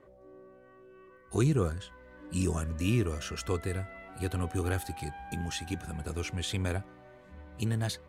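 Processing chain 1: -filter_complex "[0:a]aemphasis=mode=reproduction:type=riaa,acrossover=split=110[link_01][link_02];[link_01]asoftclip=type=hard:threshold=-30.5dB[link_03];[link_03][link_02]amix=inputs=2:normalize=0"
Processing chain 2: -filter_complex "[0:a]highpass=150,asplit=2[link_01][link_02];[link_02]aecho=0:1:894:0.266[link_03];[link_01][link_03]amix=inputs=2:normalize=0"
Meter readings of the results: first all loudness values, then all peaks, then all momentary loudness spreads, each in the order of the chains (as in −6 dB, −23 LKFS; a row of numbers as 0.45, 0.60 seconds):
−26.0, −35.0 LKFS; −9.0, −16.5 dBFS; 12, 15 LU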